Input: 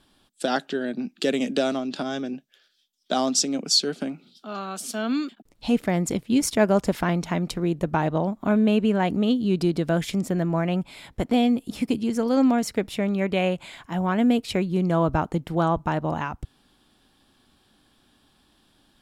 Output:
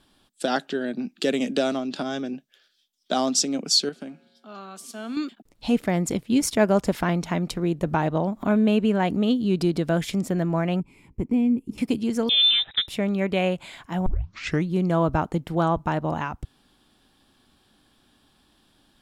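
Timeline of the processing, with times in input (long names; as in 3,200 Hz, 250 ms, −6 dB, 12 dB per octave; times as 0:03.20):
0:03.89–0:05.17: tuned comb filter 78 Hz, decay 2 s, harmonics odd
0:07.86–0:09.84: upward compression, threshold −24 dBFS
0:10.80–0:11.78: drawn EQ curve 400 Hz 0 dB, 640 Hz −21 dB, 970 Hz −9 dB, 1,600 Hz −22 dB, 2,400 Hz −8 dB, 3,700 Hz −26 dB, 5,600 Hz −14 dB
0:12.29–0:12.88: voice inversion scrambler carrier 3,800 Hz
0:14.06: tape start 0.62 s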